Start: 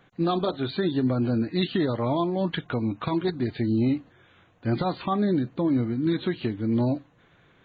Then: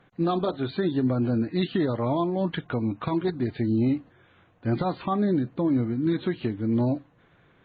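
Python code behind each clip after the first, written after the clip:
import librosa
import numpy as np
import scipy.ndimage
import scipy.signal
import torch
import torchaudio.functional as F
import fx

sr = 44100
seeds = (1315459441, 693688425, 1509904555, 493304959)

y = fx.lowpass(x, sr, hz=2600.0, slope=6)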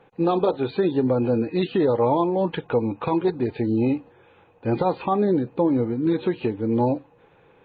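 y = fx.small_body(x, sr, hz=(480.0, 840.0, 2500.0), ring_ms=25, db=14)
y = y * librosa.db_to_amplitude(-1.0)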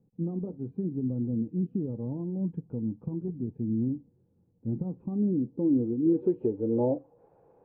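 y = fx.filter_sweep_lowpass(x, sr, from_hz=200.0, to_hz=700.0, start_s=5.0, end_s=7.29, q=2.0)
y = y * librosa.db_to_amplitude(-8.0)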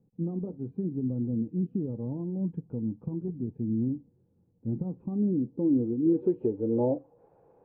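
y = x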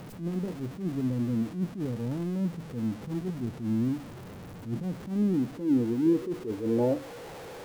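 y = x + 0.5 * 10.0 ** (-37.5 / 20.0) * np.sign(x)
y = fx.attack_slew(y, sr, db_per_s=140.0)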